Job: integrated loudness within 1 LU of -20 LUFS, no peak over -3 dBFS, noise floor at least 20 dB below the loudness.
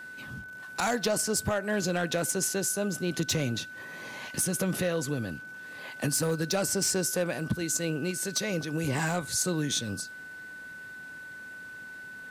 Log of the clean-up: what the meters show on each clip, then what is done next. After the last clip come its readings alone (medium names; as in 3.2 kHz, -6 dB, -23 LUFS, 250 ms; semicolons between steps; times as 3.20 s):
clipped samples 0.4%; clipping level -20.0 dBFS; steady tone 1.5 kHz; tone level -41 dBFS; loudness -29.5 LUFS; peak level -20.0 dBFS; loudness target -20.0 LUFS
-> clip repair -20 dBFS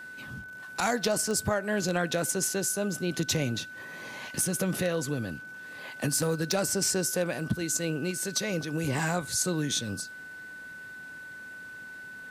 clipped samples 0.0%; steady tone 1.5 kHz; tone level -41 dBFS
-> band-stop 1.5 kHz, Q 30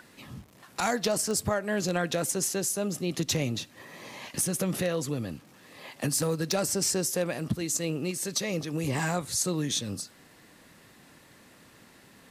steady tone not found; loudness -29.0 LUFS; peak level -11.0 dBFS; loudness target -20.0 LUFS
-> trim +9 dB; peak limiter -3 dBFS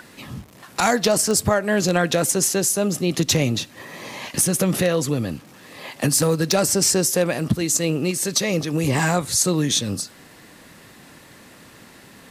loudness -20.0 LUFS; peak level -3.0 dBFS; noise floor -47 dBFS